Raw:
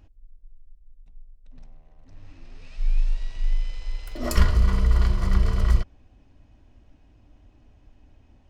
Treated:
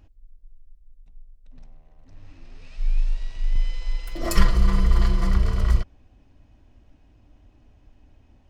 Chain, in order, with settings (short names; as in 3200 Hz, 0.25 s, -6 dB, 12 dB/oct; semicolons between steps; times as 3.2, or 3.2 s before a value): 3.55–5.31 comb 5.9 ms, depth 82%